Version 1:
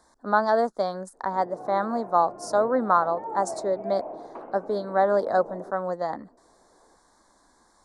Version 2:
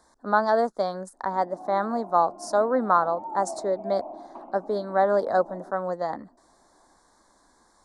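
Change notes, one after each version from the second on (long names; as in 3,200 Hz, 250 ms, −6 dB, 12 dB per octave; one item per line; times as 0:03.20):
background: add phaser with its sweep stopped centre 460 Hz, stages 6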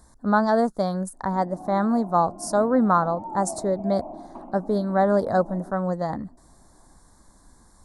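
master: remove three-way crossover with the lows and the highs turned down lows −18 dB, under 300 Hz, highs −14 dB, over 7,000 Hz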